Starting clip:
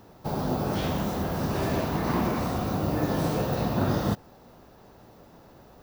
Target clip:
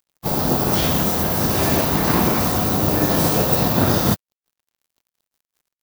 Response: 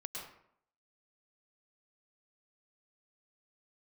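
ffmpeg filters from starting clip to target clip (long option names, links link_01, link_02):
-filter_complex "[0:a]crystalizer=i=2.5:c=0,aeval=exprs='sgn(val(0))*max(abs(val(0))-0.0106,0)':channel_layout=same,asplit=3[link_01][link_02][link_03];[link_02]asetrate=37084,aresample=44100,atempo=1.18921,volume=-14dB[link_04];[link_03]asetrate=58866,aresample=44100,atempo=0.749154,volume=-10dB[link_05];[link_01][link_04][link_05]amix=inputs=3:normalize=0,volume=8dB"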